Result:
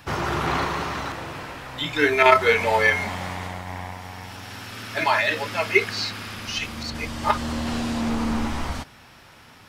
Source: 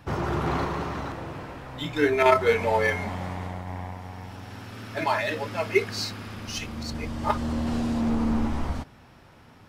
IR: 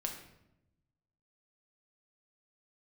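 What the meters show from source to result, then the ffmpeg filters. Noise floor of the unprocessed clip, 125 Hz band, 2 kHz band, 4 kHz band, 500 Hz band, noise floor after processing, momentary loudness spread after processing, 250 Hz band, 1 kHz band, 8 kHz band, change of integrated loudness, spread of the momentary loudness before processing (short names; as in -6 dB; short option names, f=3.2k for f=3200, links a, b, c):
-52 dBFS, -1.0 dB, +7.5 dB, +7.0 dB, +1.0 dB, -49 dBFS, 18 LU, -0.5 dB, +4.5 dB, +4.5 dB, +4.0 dB, 17 LU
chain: -filter_complex "[0:a]tiltshelf=f=1.1k:g=-6,acrossover=split=3900[a][b];[b]acompressor=threshold=-43dB:ratio=4:attack=1:release=60[c];[a][c]amix=inputs=2:normalize=0,volume=5dB"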